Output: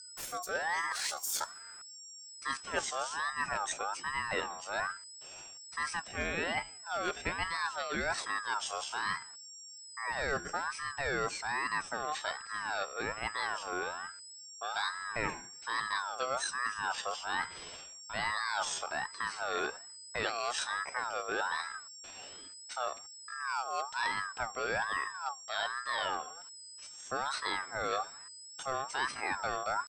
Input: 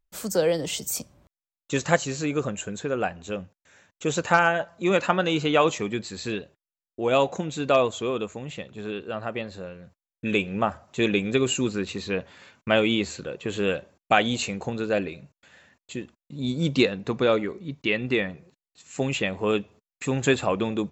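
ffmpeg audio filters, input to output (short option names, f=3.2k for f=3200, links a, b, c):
-af "areverse,acompressor=threshold=-35dB:ratio=8,areverse,aeval=exprs='val(0)+0.00316*sin(2*PI*6500*n/s)':c=same,atempo=0.7,aeval=exprs='val(0)*sin(2*PI*1200*n/s+1200*0.25/1.2*sin(2*PI*1.2*n/s))':c=same,volume=5.5dB"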